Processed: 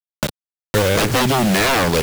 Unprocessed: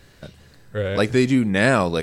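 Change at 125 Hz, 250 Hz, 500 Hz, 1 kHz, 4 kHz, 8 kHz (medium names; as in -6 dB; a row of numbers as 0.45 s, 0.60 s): +3.0 dB, 0.0 dB, +2.5 dB, +7.0 dB, +10.0 dB, +13.5 dB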